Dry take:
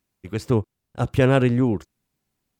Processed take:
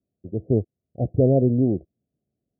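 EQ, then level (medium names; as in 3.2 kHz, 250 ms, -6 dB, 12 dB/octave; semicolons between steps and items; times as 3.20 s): high-pass 69 Hz; steep low-pass 710 Hz 96 dB/octave; 0.0 dB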